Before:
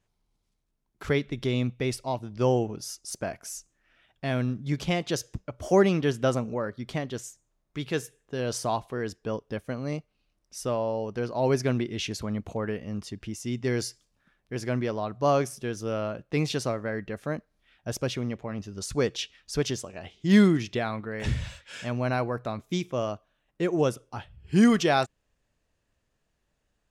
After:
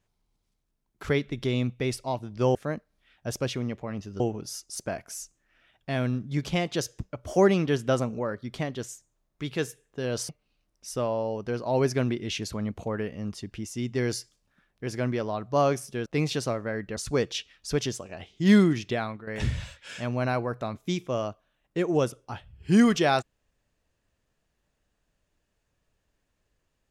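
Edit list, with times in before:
8.64–9.98 s: delete
15.75–16.25 s: delete
17.16–18.81 s: move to 2.55 s
20.85–21.11 s: fade out, to -10.5 dB

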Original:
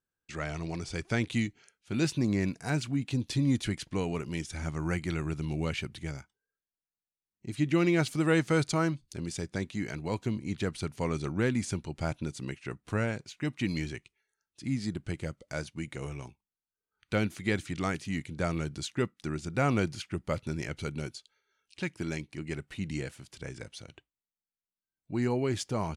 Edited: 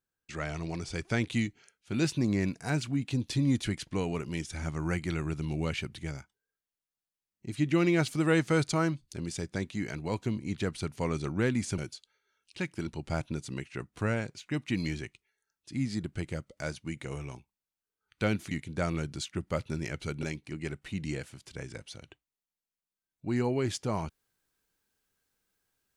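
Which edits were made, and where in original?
17.42–18.13 s: delete
18.93–20.08 s: delete
21.00–22.09 s: move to 11.78 s

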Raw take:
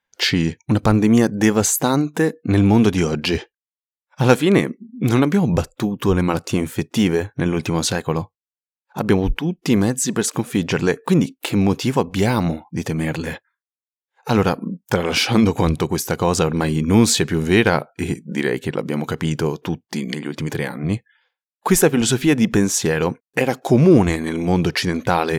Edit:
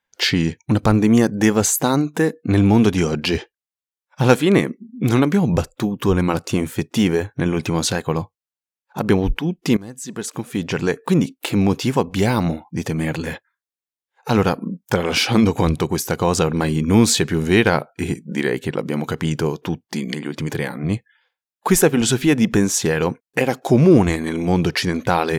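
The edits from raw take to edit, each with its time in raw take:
9.77–11.65 s: fade in equal-power, from -22.5 dB

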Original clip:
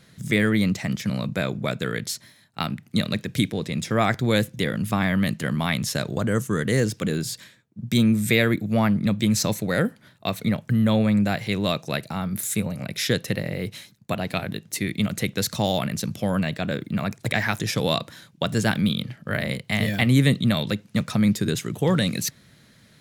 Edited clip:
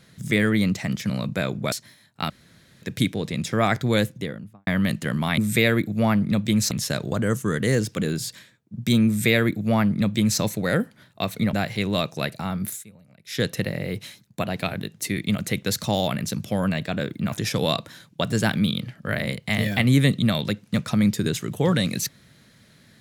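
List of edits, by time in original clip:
1.72–2.10 s: delete
2.68–3.20 s: room tone
4.31–5.05 s: studio fade out
8.12–9.45 s: copy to 5.76 s
10.58–11.24 s: delete
12.37–13.15 s: dip -22.5 dB, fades 0.18 s
17.03–17.54 s: delete

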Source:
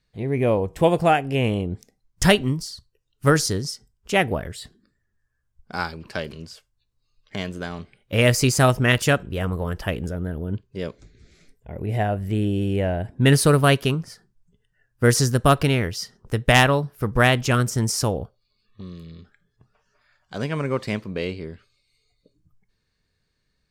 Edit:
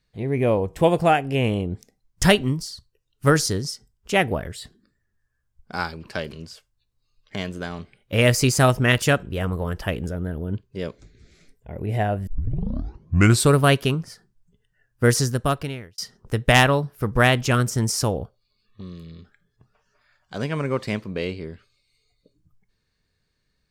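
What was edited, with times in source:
12.27 s: tape start 1.28 s
15.03–15.98 s: fade out

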